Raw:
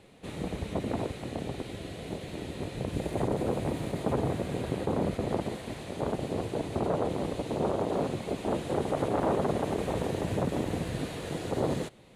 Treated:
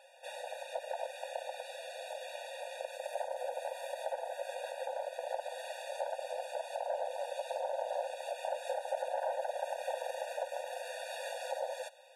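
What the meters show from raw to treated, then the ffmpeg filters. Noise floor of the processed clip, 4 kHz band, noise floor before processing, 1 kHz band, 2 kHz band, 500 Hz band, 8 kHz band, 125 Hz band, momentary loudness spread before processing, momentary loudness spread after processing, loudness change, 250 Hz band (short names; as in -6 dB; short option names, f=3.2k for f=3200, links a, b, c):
-48 dBFS, -4.0 dB, -43 dBFS, -3.0 dB, -2.5 dB, -5.5 dB, -3.5 dB, under -40 dB, 8 LU, 6 LU, -7.5 dB, under -40 dB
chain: -af "acompressor=threshold=-31dB:ratio=6,afftfilt=real='re*eq(mod(floor(b*sr/1024/480),2),1)':imag='im*eq(mod(floor(b*sr/1024/480),2),1)':win_size=1024:overlap=0.75,volume=3dB"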